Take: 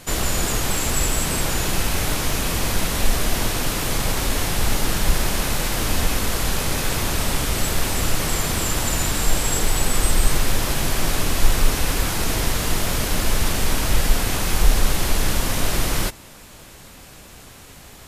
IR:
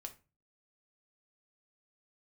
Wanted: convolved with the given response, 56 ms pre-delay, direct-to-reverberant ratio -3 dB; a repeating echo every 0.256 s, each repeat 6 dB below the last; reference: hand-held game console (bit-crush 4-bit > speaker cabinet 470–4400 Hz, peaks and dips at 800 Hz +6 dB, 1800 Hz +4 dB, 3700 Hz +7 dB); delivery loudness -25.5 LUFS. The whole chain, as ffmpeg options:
-filter_complex "[0:a]aecho=1:1:256|512|768|1024|1280|1536:0.501|0.251|0.125|0.0626|0.0313|0.0157,asplit=2[a][b];[1:a]atrim=start_sample=2205,adelay=56[c];[b][c]afir=irnorm=-1:irlink=0,volume=7.5dB[d];[a][d]amix=inputs=2:normalize=0,acrusher=bits=3:mix=0:aa=0.000001,highpass=470,equalizer=f=800:t=q:w=4:g=6,equalizer=f=1.8k:t=q:w=4:g=4,equalizer=f=3.7k:t=q:w=4:g=7,lowpass=f=4.4k:w=0.5412,lowpass=f=4.4k:w=1.3066,volume=-7dB"

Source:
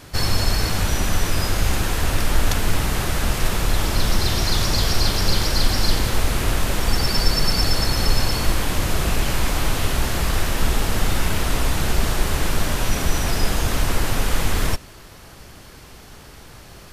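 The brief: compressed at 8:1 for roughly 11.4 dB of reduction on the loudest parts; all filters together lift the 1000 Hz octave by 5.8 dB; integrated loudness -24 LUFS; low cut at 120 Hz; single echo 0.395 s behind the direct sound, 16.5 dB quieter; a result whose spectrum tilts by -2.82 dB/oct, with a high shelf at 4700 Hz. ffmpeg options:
-af "highpass=120,equalizer=f=1k:t=o:g=7,highshelf=f=4.7k:g=5.5,acompressor=threshold=-28dB:ratio=8,aecho=1:1:395:0.15,volume=5.5dB"

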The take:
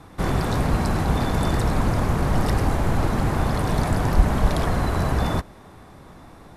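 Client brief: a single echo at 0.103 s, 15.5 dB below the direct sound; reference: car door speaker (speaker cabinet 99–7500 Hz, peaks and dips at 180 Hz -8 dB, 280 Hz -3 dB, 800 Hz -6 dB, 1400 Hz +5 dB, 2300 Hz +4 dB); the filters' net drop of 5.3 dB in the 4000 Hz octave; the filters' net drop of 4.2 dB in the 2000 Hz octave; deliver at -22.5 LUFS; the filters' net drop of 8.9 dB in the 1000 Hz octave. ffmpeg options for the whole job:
-af "highpass=99,equalizer=f=180:t=q:w=4:g=-8,equalizer=f=280:t=q:w=4:g=-3,equalizer=f=800:t=q:w=4:g=-6,equalizer=f=1.4k:t=q:w=4:g=5,equalizer=f=2.3k:t=q:w=4:g=4,lowpass=f=7.5k:w=0.5412,lowpass=f=7.5k:w=1.3066,equalizer=f=1k:t=o:g=-8.5,equalizer=f=2k:t=o:g=-5,equalizer=f=4k:t=o:g=-5,aecho=1:1:103:0.168,volume=5.5dB"

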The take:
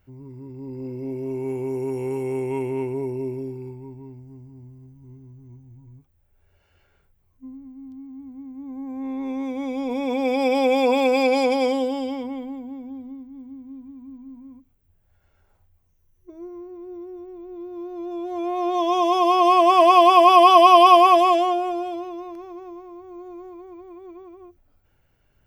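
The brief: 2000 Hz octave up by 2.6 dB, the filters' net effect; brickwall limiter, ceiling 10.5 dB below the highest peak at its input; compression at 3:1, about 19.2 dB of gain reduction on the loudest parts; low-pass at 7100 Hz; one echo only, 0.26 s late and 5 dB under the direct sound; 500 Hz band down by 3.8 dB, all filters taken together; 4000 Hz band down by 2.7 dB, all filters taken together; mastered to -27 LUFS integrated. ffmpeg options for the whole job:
-af "lowpass=7.1k,equalizer=f=500:t=o:g=-6.5,equalizer=f=2k:t=o:g=7,equalizer=f=4k:t=o:g=-7,acompressor=threshold=-37dB:ratio=3,alimiter=level_in=9.5dB:limit=-24dB:level=0:latency=1,volume=-9.5dB,aecho=1:1:260:0.562,volume=13dB"

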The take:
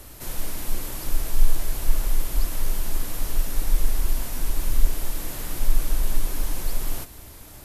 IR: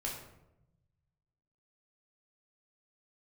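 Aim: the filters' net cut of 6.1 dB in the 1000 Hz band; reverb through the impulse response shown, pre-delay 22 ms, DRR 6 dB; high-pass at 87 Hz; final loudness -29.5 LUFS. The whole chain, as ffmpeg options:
-filter_complex "[0:a]highpass=87,equalizer=f=1k:t=o:g=-8,asplit=2[a][b];[1:a]atrim=start_sample=2205,adelay=22[c];[b][c]afir=irnorm=-1:irlink=0,volume=-7.5dB[d];[a][d]amix=inputs=2:normalize=0,volume=3.5dB"

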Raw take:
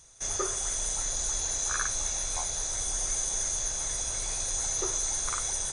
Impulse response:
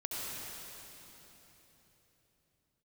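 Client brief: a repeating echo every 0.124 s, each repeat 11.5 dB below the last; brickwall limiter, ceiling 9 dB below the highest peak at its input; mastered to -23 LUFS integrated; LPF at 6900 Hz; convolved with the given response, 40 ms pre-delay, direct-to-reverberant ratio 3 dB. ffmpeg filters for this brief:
-filter_complex "[0:a]lowpass=6.9k,alimiter=limit=-24dB:level=0:latency=1,aecho=1:1:124|248|372:0.266|0.0718|0.0194,asplit=2[a][b];[1:a]atrim=start_sample=2205,adelay=40[c];[b][c]afir=irnorm=-1:irlink=0,volume=-6.5dB[d];[a][d]amix=inputs=2:normalize=0,volume=7dB"

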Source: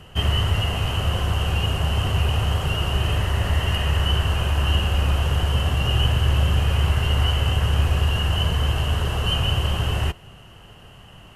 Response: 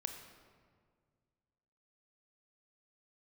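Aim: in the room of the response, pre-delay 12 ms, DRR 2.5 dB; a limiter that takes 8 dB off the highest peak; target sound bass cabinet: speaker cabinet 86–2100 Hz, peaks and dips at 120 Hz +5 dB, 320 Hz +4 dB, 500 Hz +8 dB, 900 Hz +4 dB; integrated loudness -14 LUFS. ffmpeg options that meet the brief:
-filter_complex "[0:a]alimiter=limit=-15.5dB:level=0:latency=1,asplit=2[a][b];[1:a]atrim=start_sample=2205,adelay=12[c];[b][c]afir=irnorm=-1:irlink=0,volume=-1.5dB[d];[a][d]amix=inputs=2:normalize=0,highpass=f=86:w=0.5412,highpass=f=86:w=1.3066,equalizer=f=120:t=q:w=4:g=5,equalizer=f=320:t=q:w=4:g=4,equalizer=f=500:t=q:w=4:g=8,equalizer=f=900:t=q:w=4:g=4,lowpass=f=2.1k:w=0.5412,lowpass=f=2.1k:w=1.3066,volume=10.5dB"

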